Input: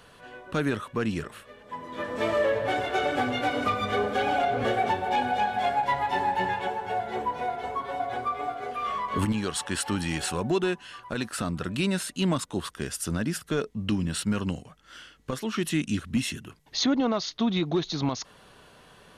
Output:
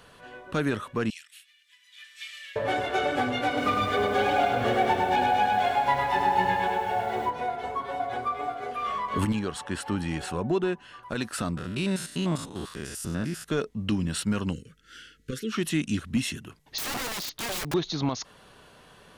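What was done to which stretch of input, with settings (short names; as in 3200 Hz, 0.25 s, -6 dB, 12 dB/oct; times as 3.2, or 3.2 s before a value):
1.1–2.56 inverse Chebyshev high-pass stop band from 920 Hz, stop band 50 dB
3.47–7.3 lo-fi delay 0.103 s, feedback 55%, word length 9-bit, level -3.5 dB
9.39–11.03 high shelf 2300 Hz -9.5 dB
11.57–13.48 stepped spectrum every 0.1 s
14.53–15.52 elliptic band-stop 480–1400 Hz, stop band 50 dB
16.78–17.74 wrapped overs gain 27.5 dB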